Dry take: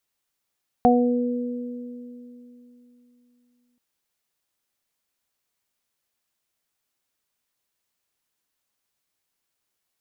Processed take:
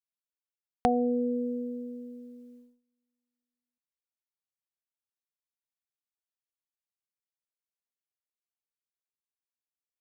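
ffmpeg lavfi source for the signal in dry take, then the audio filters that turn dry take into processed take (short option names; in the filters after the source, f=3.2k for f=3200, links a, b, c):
-f lavfi -i "aevalsrc='0.158*pow(10,-3*t/3.41)*sin(2*PI*244*t)+0.126*pow(10,-3*t/2.59)*sin(2*PI*488*t)+0.251*pow(10,-3*t/0.44)*sin(2*PI*732*t)':d=2.93:s=44100"
-af "agate=range=-25dB:threshold=-50dB:ratio=16:detection=peak,equalizer=f=170:t=o:w=2.3:g=-3,acompressor=threshold=-26dB:ratio=2"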